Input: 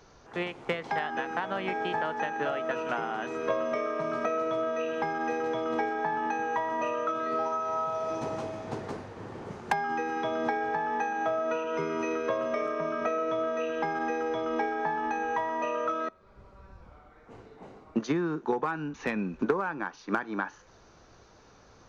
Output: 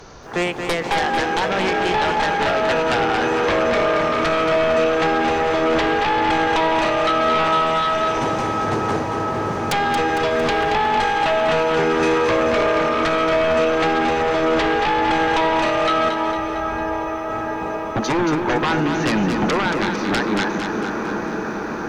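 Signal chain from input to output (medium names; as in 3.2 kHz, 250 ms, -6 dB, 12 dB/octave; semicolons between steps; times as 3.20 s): echo that smears into a reverb 759 ms, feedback 77%, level -12 dB; sine folder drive 13 dB, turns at -14 dBFS; bit-crushed delay 227 ms, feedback 55%, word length 9-bit, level -6.5 dB; trim -2 dB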